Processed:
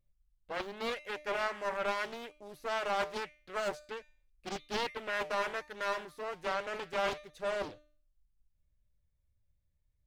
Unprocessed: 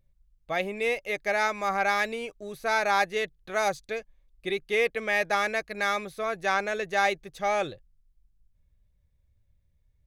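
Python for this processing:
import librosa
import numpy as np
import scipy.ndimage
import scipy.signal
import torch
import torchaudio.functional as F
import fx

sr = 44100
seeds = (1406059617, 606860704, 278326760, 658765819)

y = fx.comb_fb(x, sr, f0_hz=300.0, decay_s=0.45, harmonics='all', damping=0.0, mix_pct=70)
y = fx.doppler_dist(y, sr, depth_ms=0.79)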